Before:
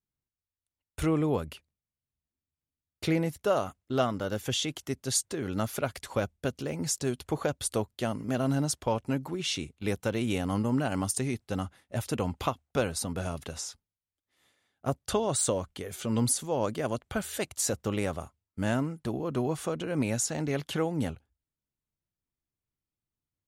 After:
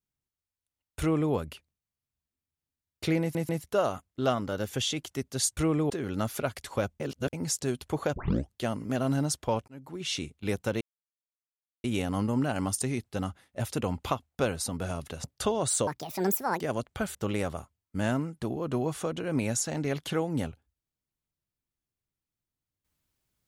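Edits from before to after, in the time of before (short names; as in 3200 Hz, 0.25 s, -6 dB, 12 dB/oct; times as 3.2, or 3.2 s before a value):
1–1.33 copy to 5.29
3.21 stutter 0.14 s, 3 plays
6.39–6.72 reverse
7.55 tape start 0.38 s
9.07–9.55 fade in
10.2 insert silence 1.03 s
13.6–14.92 cut
15.55–16.76 speed 164%
17.3–17.78 cut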